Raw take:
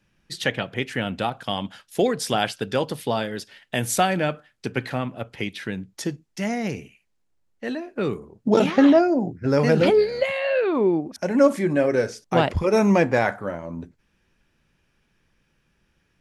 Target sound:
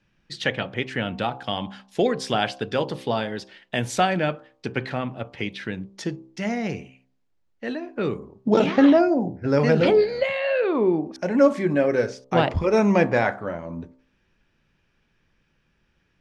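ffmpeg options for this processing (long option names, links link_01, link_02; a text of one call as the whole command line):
ffmpeg -i in.wav -af "lowpass=5300,bandreject=frequency=65.03:width_type=h:width=4,bandreject=frequency=130.06:width_type=h:width=4,bandreject=frequency=195.09:width_type=h:width=4,bandreject=frequency=260.12:width_type=h:width=4,bandreject=frequency=325.15:width_type=h:width=4,bandreject=frequency=390.18:width_type=h:width=4,bandreject=frequency=455.21:width_type=h:width=4,bandreject=frequency=520.24:width_type=h:width=4,bandreject=frequency=585.27:width_type=h:width=4,bandreject=frequency=650.3:width_type=h:width=4,bandreject=frequency=715.33:width_type=h:width=4,bandreject=frequency=780.36:width_type=h:width=4,bandreject=frequency=845.39:width_type=h:width=4,bandreject=frequency=910.42:width_type=h:width=4,bandreject=frequency=975.45:width_type=h:width=4,bandreject=frequency=1040.48:width_type=h:width=4,bandreject=frequency=1105.51:width_type=h:width=4,bandreject=frequency=1170.54:width_type=h:width=4,bandreject=frequency=1235.57:width_type=h:width=4" out.wav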